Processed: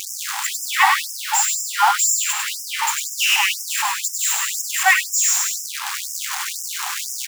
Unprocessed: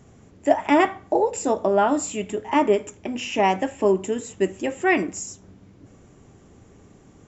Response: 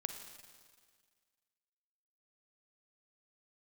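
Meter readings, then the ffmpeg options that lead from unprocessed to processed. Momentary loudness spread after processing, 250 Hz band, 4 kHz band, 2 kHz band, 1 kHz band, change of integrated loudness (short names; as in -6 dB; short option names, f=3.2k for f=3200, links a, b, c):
9 LU, under -40 dB, +15.5 dB, +9.5 dB, +3.0 dB, +4.0 dB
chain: -af "aeval=exprs='val(0)+0.5*0.0891*sgn(val(0))':c=same,aecho=1:1:100|180|244|295.2|336.2:0.631|0.398|0.251|0.158|0.1,afftfilt=real='re*gte(b*sr/1024,720*pow(5100/720,0.5+0.5*sin(2*PI*2*pts/sr)))':imag='im*gte(b*sr/1024,720*pow(5100/720,0.5+0.5*sin(2*PI*2*pts/sr)))':win_size=1024:overlap=0.75,volume=6dB"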